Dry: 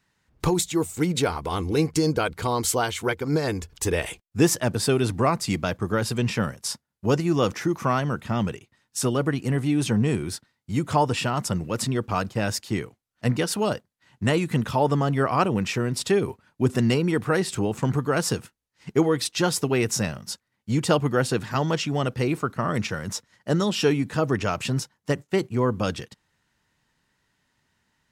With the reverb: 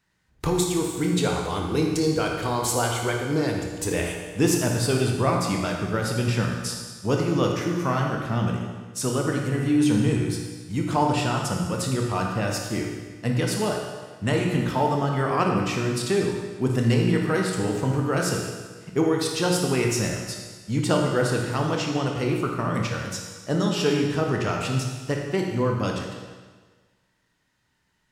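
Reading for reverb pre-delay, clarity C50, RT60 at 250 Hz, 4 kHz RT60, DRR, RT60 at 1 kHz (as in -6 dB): 17 ms, 2.0 dB, 1.4 s, 1.4 s, 0.0 dB, 1.4 s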